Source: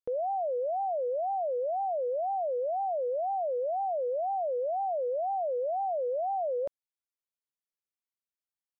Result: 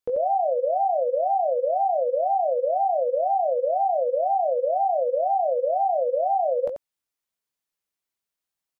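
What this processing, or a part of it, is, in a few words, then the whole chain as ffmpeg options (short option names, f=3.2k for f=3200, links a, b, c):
slapback doubling: -filter_complex "[0:a]asplit=3[a][b][c];[b]adelay=19,volume=-8dB[d];[c]adelay=88,volume=-7dB[e];[a][d][e]amix=inputs=3:normalize=0,volume=6.5dB"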